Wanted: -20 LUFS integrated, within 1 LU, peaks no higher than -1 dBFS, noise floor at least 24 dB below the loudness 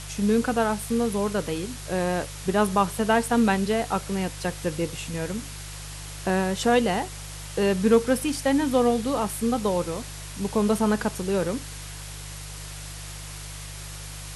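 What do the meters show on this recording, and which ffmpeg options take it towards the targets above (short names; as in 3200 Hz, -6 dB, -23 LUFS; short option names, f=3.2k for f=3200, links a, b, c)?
hum 50 Hz; harmonics up to 150 Hz; hum level -38 dBFS; noise floor -38 dBFS; noise floor target -49 dBFS; loudness -25.0 LUFS; peak -7.5 dBFS; loudness target -20.0 LUFS
-> -af "bandreject=f=50:t=h:w=4,bandreject=f=100:t=h:w=4,bandreject=f=150:t=h:w=4"
-af "afftdn=nr=11:nf=-38"
-af "volume=5dB"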